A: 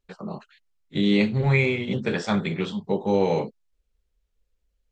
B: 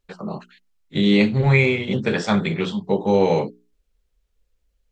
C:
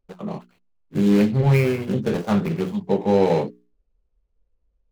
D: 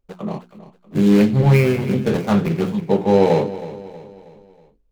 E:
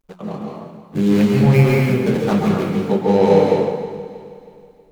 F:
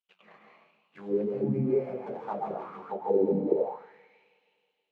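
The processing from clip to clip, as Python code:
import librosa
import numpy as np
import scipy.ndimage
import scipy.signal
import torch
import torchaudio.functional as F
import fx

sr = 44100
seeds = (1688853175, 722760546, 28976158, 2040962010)

y1 = fx.hum_notches(x, sr, base_hz=60, count=7)
y1 = y1 * librosa.db_to_amplitude(4.5)
y2 = scipy.signal.medfilt(y1, 25)
y3 = fx.echo_feedback(y2, sr, ms=319, feedback_pct=46, wet_db=-15)
y3 = y3 * librosa.db_to_amplitude(3.5)
y4 = fx.quant_dither(y3, sr, seeds[0], bits=12, dither='none')
y4 = fx.rev_plate(y4, sr, seeds[1], rt60_s=1.2, hf_ratio=0.75, predelay_ms=120, drr_db=-1.5)
y4 = y4 * librosa.db_to_amplitude(-2.0)
y5 = fx.auto_wah(y4, sr, base_hz=240.0, top_hz=3000.0, q=5.5, full_db=-8.0, direction='down')
y5 = y5 * librosa.db_to_amplitude(-3.0)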